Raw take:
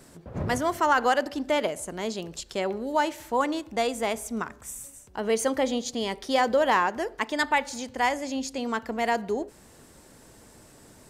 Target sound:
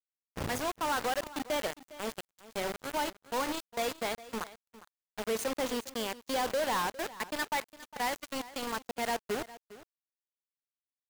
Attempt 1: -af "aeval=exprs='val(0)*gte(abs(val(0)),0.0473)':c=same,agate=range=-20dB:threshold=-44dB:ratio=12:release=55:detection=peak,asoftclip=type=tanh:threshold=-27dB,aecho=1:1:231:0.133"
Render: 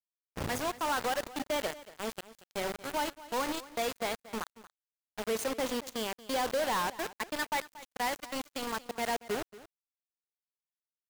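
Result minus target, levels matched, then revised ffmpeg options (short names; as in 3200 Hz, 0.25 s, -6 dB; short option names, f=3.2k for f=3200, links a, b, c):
echo 0.176 s early
-af "aeval=exprs='val(0)*gte(abs(val(0)),0.0473)':c=same,agate=range=-20dB:threshold=-44dB:ratio=12:release=55:detection=peak,asoftclip=type=tanh:threshold=-27dB,aecho=1:1:407:0.133"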